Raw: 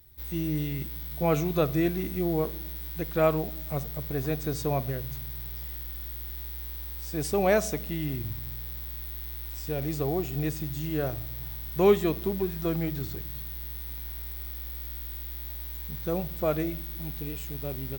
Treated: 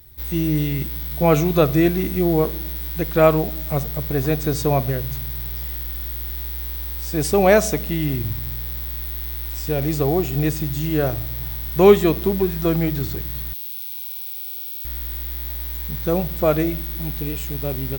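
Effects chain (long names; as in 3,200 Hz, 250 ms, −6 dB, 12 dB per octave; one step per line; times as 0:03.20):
0:13.53–0:14.85: Butterworth high-pass 2,300 Hz 72 dB per octave
level +9 dB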